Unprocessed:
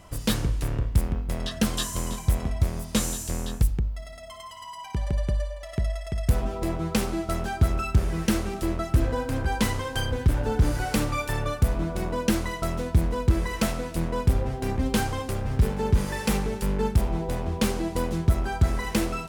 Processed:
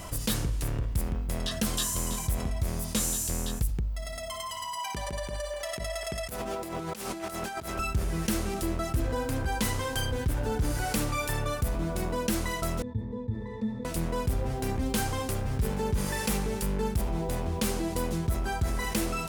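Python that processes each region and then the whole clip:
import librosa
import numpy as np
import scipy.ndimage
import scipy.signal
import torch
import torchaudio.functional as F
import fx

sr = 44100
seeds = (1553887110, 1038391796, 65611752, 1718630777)

y = fx.chain(x, sr, fx.highpass(hz=330.0, slope=6),
    fx.echo_wet_bandpass(ms=250, feedback_pct=61, hz=1300.0, wet_db=-12.0),
    fx.over_compress(threshold_db=-36.0, ratio=-0.5), at=(4.77, 7.79))
y = fx.chain(y, sr, fx.peak_eq(hz=280.0, db=5.5, octaves=2.1),
    fx.octave_resonator(note='A', decay_s=0.18), at=(12.82, 13.85))
y = fx.high_shelf(y, sr, hz=5900.0, db=8.5)
y = fx.env_flatten(y, sr, amount_pct=50)
y = F.gain(torch.from_numpy(y), -9.0).numpy()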